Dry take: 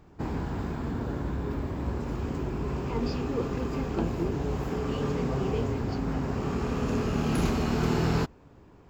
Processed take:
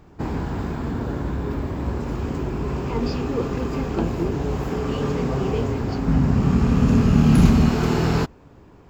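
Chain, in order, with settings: 6.08–7.69 s: resonant low shelf 280 Hz +7 dB, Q 1.5; trim +5.5 dB

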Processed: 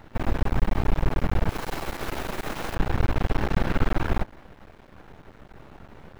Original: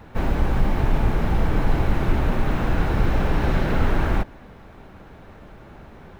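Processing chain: 1.49–2.75 s: tone controls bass -12 dB, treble +11 dB; half-wave rectifier

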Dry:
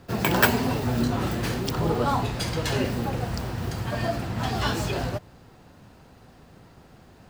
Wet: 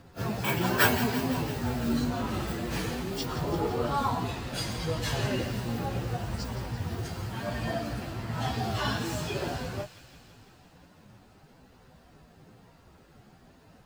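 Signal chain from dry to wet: plain phase-vocoder stretch 1.9×; feedback echo behind a high-pass 169 ms, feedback 71%, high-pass 1.9 kHz, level -11.5 dB; trim -2 dB

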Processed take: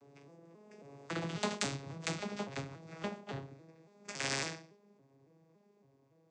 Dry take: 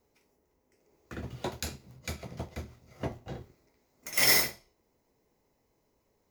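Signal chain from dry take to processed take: vocoder on a broken chord minor triad, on C#3, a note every 275 ms; Doppler pass-by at 1.51 s, 6 m/s, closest 4.2 m; spectrum-flattening compressor 2:1

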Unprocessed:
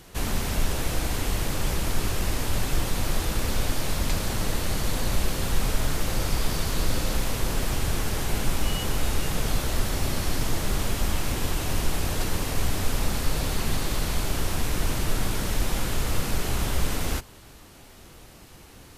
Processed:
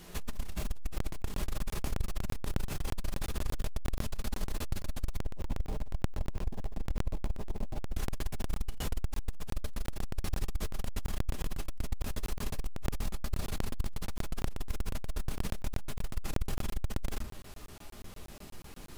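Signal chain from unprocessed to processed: 5.19–7.94 s: steep low-pass 1 kHz 48 dB/octave; peak limiter -19 dBFS, peak gain reduction 8 dB; compression 2:1, threshold -32 dBFS, peak gain reduction 6 dB; short-mantissa float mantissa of 2-bit; flutter echo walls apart 11.3 m, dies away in 0.2 s; simulated room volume 220 m³, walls furnished, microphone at 1.3 m; crackling interface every 0.12 s, samples 1024, zero, from 0.98 s; transformer saturation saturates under 86 Hz; trim -3.5 dB

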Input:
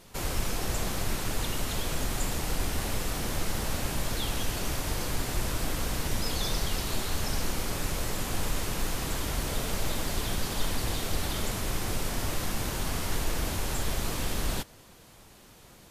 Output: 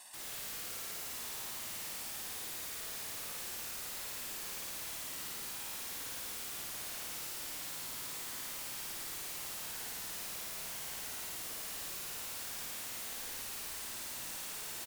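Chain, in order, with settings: high-pass 740 Hz 12 dB/octave; peaking EQ 8 kHz +14.5 dB 0.29 oct; band-stop 1.1 kHz, Q 17; comb 1.2 ms, depth 88%; reverse; compression 16:1, threshold -47 dBFS, peak gain reduction 24.5 dB; reverse; integer overflow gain 49 dB; tape speed +7%; on a send: flutter echo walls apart 9.4 m, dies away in 1.4 s; on the sum: trim +8 dB

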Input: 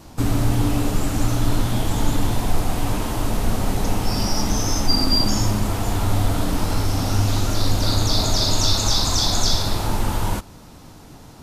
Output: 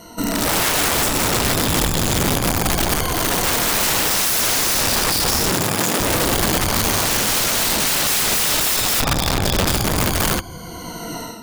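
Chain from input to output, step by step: drifting ripple filter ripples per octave 1.9, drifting -0.27 Hz, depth 23 dB; flange 0.66 Hz, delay 1.4 ms, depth 7.5 ms, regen -56%; level rider gain up to 13 dB; 9.00–9.67 s: low-pass 2.1 kHz 12 dB/octave; integer overflow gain 14 dB; peak limiter -18.5 dBFS, peak gain reduction 4.5 dB; 5.52–5.99 s: high-pass 66 Hz -> 200 Hz 24 dB/octave; trim +5 dB

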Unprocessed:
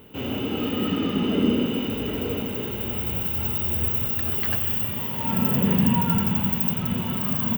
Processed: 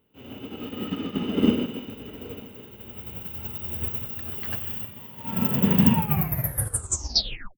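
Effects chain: tape stop on the ending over 1.68 s; upward expansion 2.5:1, over -33 dBFS; trim +4 dB

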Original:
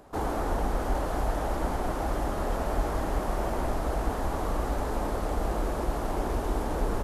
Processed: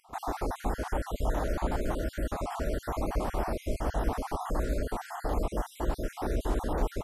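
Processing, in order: random holes in the spectrogram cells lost 45%

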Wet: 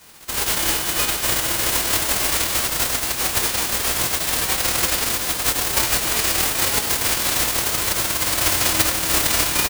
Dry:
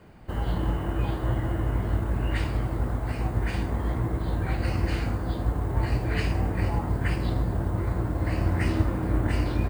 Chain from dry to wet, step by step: formants flattened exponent 0.1; feedback delay 91 ms, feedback 52%, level -12 dB; harmony voices -12 st -6 dB; trim +3.5 dB

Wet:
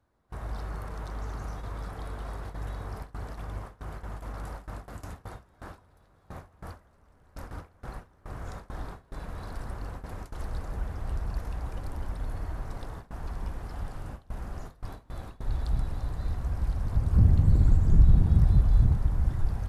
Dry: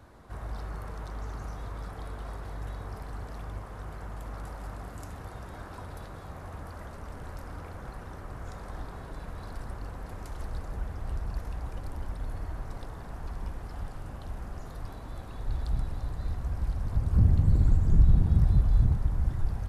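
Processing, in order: gate with hold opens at -30 dBFS; trim +1.5 dB

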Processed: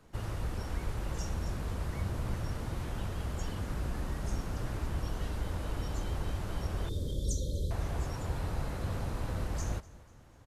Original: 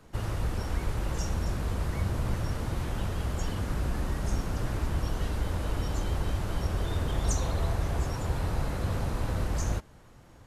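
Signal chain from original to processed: 6.89–7.71 s: brick-wall FIR band-stop 620–3100 Hz; feedback delay 246 ms, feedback 45%, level -20.5 dB; trim -5 dB

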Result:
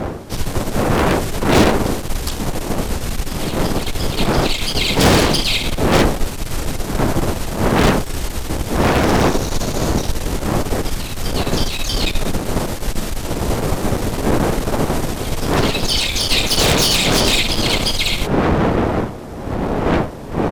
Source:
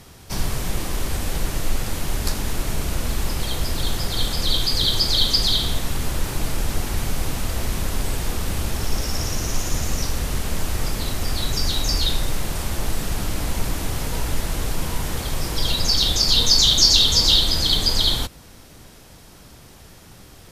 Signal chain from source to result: wind noise 520 Hz -16 dBFS; Chebyshev shaper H 5 -8 dB, 6 -8 dB, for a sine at -1.5 dBFS; harmony voices -7 st -2 dB; trim -10 dB

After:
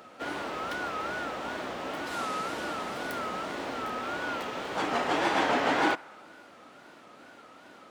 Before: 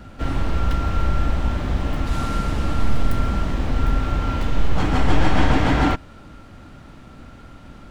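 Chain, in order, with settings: wow and flutter 130 cents; Chebyshev high-pass 460 Hz, order 2; feedback echo behind a band-pass 68 ms, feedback 74%, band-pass 1.2 kHz, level -24 dB; trim -2.5 dB

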